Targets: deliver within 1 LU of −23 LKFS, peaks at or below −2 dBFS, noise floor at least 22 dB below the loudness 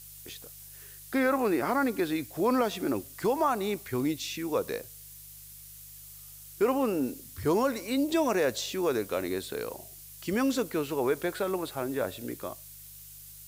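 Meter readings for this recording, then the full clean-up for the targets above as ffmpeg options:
mains hum 50 Hz; hum harmonics up to 150 Hz; level of the hum −55 dBFS; background noise floor −48 dBFS; target noise floor −52 dBFS; integrated loudness −29.5 LKFS; sample peak −15.5 dBFS; target loudness −23.0 LKFS
→ -af "bandreject=frequency=50:width_type=h:width=4,bandreject=frequency=100:width_type=h:width=4,bandreject=frequency=150:width_type=h:width=4"
-af "afftdn=noise_reduction=6:noise_floor=-48"
-af "volume=6.5dB"

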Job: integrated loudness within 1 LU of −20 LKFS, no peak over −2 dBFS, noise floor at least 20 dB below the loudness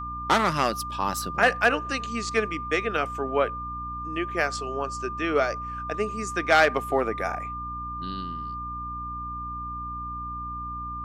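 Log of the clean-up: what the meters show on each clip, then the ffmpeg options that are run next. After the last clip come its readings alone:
mains hum 60 Hz; hum harmonics up to 300 Hz; level of the hum −37 dBFS; interfering tone 1,200 Hz; level of the tone −32 dBFS; integrated loudness −27.0 LKFS; sample peak −5.0 dBFS; target loudness −20.0 LKFS
→ -af "bandreject=frequency=60:width_type=h:width=6,bandreject=frequency=120:width_type=h:width=6,bandreject=frequency=180:width_type=h:width=6,bandreject=frequency=240:width_type=h:width=6,bandreject=frequency=300:width_type=h:width=6"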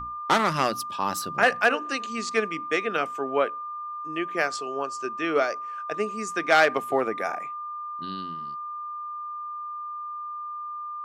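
mains hum none found; interfering tone 1,200 Hz; level of the tone −32 dBFS
→ -af "bandreject=frequency=1200:width=30"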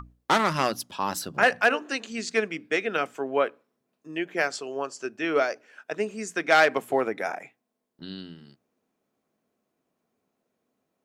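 interfering tone none found; integrated loudness −26.0 LKFS; sample peak −5.5 dBFS; target loudness −20.0 LKFS
→ -af "volume=6dB,alimiter=limit=-2dB:level=0:latency=1"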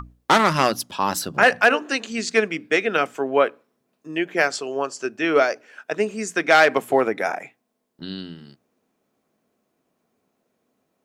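integrated loudness −20.5 LKFS; sample peak −2.0 dBFS; background noise floor −74 dBFS

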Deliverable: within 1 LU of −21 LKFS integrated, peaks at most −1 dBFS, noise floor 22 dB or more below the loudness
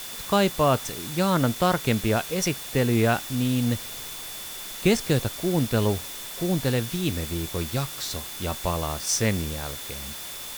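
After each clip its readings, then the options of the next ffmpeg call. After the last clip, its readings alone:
interfering tone 3,500 Hz; level of the tone −43 dBFS; background noise floor −37 dBFS; target noise floor −48 dBFS; integrated loudness −25.5 LKFS; sample peak −7.5 dBFS; target loudness −21.0 LKFS
→ -af "bandreject=frequency=3500:width=30"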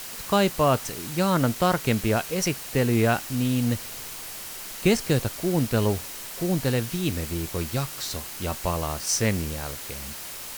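interfering tone none found; background noise floor −38 dBFS; target noise floor −48 dBFS
→ -af "afftdn=noise_reduction=10:noise_floor=-38"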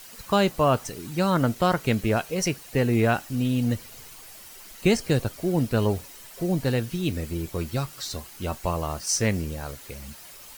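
background noise floor −45 dBFS; target noise floor −48 dBFS
→ -af "afftdn=noise_reduction=6:noise_floor=-45"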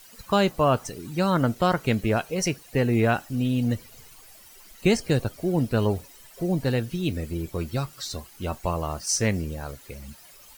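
background noise floor −50 dBFS; integrated loudness −25.5 LKFS; sample peak −8.0 dBFS; target loudness −21.0 LKFS
→ -af "volume=4.5dB"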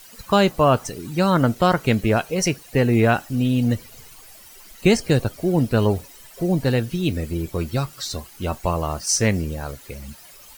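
integrated loudness −21.0 LKFS; sample peak −3.5 dBFS; background noise floor −46 dBFS

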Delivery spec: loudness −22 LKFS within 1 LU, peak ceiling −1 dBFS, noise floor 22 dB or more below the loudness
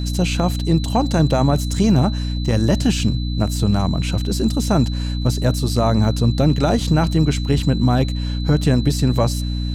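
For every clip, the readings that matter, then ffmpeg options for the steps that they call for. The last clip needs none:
mains hum 60 Hz; hum harmonics up to 300 Hz; level of the hum −20 dBFS; interfering tone 4,000 Hz; level of the tone −34 dBFS; integrated loudness −18.5 LKFS; sample peak −5.0 dBFS; target loudness −22.0 LKFS
→ -af "bandreject=frequency=60:width_type=h:width=6,bandreject=frequency=120:width_type=h:width=6,bandreject=frequency=180:width_type=h:width=6,bandreject=frequency=240:width_type=h:width=6,bandreject=frequency=300:width_type=h:width=6"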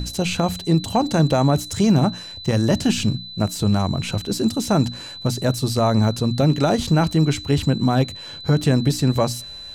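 mains hum none found; interfering tone 4,000 Hz; level of the tone −34 dBFS
→ -af "bandreject=frequency=4000:width=30"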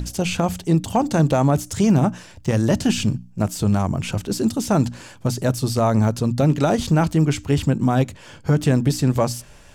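interfering tone none found; integrated loudness −20.5 LKFS; sample peak −7.0 dBFS; target loudness −22.0 LKFS
→ -af "volume=-1.5dB"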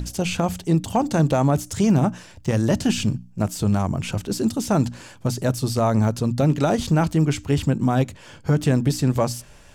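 integrated loudness −22.0 LKFS; sample peak −8.5 dBFS; background noise floor −47 dBFS

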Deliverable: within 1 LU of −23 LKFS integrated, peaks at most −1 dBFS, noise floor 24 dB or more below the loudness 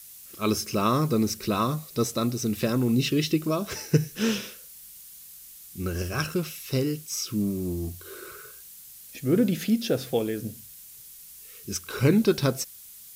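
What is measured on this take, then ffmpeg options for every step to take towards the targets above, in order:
background noise floor −47 dBFS; target noise floor −51 dBFS; integrated loudness −26.5 LKFS; sample peak −7.5 dBFS; target loudness −23.0 LKFS
→ -af "afftdn=noise_reduction=6:noise_floor=-47"
-af "volume=3.5dB"

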